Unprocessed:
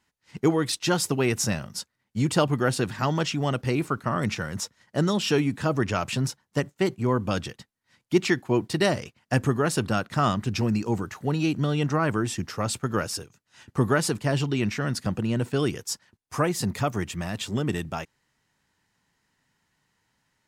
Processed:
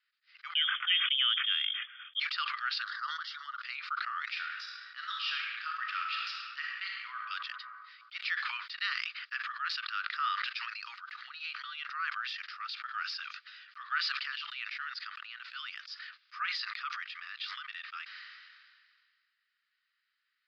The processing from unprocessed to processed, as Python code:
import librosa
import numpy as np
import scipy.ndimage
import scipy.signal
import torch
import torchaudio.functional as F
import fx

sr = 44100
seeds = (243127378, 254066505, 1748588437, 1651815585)

y = fx.freq_invert(x, sr, carrier_hz=3400, at=(0.55, 2.2))
y = fx.fixed_phaser(y, sr, hz=500.0, stages=8, at=(2.82, 3.61))
y = fx.reverb_throw(y, sr, start_s=4.31, length_s=2.87, rt60_s=1.3, drr_db=1.5)
y = scipy.signal.sosfilt(scipy.signal.cheby1(5, 1.0, [1200.0, 4900.0], 'bandpass', fs=sr, output='sos'), y)
y = fx.transient(y, sr, attack_db=-1, sustain_db=-6)
y = fx.sustainer(y, sr, db_per_s=29.0)
y = y * 10.0 ** (-4.5 / 20.0)